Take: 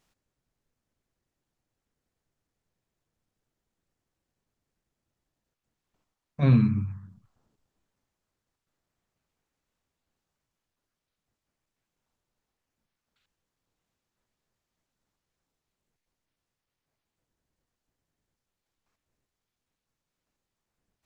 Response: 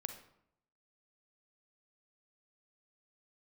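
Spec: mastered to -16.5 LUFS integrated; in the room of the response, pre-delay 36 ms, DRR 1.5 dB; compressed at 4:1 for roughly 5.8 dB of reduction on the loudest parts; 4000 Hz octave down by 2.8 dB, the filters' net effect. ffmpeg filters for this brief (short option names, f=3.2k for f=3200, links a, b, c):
-filter_complex "[0:a]equalizer=f=4k:t=o:g=-3,acompressor=threshold=-21dB:ratio=4,asplit=2[a][b];[1:a]atrim=start_sample=2205,adelay=36[c];[b][c]afir=irnorm=-1:irlink=0,volume=0.5dB[d];[a][d]amix=inputs=2:normalize=0,volume=10.5dB"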